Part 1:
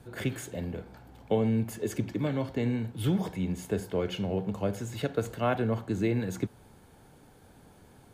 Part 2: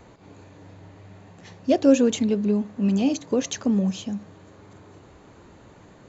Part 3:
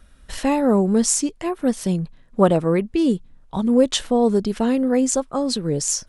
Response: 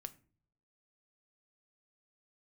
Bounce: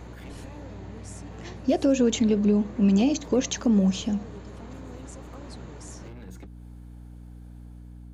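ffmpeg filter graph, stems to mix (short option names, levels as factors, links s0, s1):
-filter_complex "[0:a]asoftclip=type=hard:threshold=0.0266,dynaudnorm=f=690:g=3:m=1.58,volume=0.376[s0];[1:a]alimiter=limit=0.15:level=0:latency=1:release=174,volume=1.41[s1];[2:a]acompressor=threshold=0.0562:ratio=6,volume=0.224,asplit=2[s2][s3];[s3]apad=whole_len=358648[s4];[s0][s4]sidechaincompress=threshold=0.00282:ratio=3:attack=16:release=264[s5];[s5][s2]amix=inputs=2:normalize=0,acompressor=threshold=0.00398:ratio=2,volume=1[s6];[s1][s6]amix=inputs=2:normalize=0,aeval=exprs='val(0)+0.00794*(sin(2*PI*60*n/s)+sin(2*PI*2*60*n/s)/2+sin(2*PI*3*60*n/s)/3+sin(2*PI*4*60*n/s)/4+sin(2*PI*5*60*n/s)/5)':c=same"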